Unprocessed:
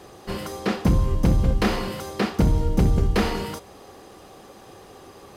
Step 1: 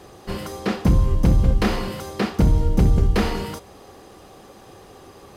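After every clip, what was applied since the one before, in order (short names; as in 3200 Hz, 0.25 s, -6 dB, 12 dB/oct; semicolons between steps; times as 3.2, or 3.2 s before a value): low shelf 140 Hz +4 dB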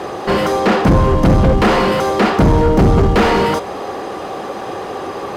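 overdrive pedal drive 29 dB, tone 1000 Hz, clips at -6 dBFS; gain +4 dB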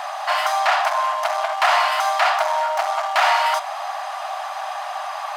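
brick-wall FIR high-pass 590 Hz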